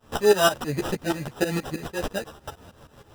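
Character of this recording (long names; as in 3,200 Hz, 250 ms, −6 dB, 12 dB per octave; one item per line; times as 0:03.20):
a quantiser's noise floor 8 bits, dither none
tremolo saw up 6.3 Hz, depth 90%
aliases and images of a low sample rate 2,200 Hz, jitter 0%
a shimmering, thickened sound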